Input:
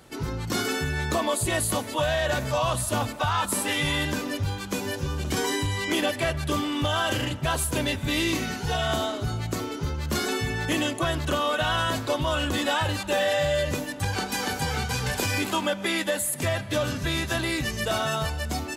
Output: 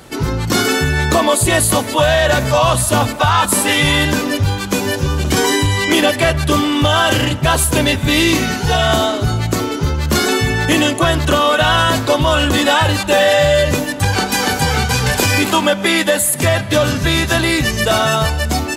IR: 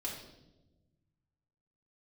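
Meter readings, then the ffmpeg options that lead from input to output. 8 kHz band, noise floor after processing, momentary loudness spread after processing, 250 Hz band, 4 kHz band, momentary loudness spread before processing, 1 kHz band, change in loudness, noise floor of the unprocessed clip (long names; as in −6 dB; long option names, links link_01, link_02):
+12.0 dB, −23 dBFS, 5 LU, +12.0 dB, +12.0 dB, 5 LU, +12.0 dB, +12.0 dB, −35 dBFS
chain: -af "acontrast=74,volume=5.5dB"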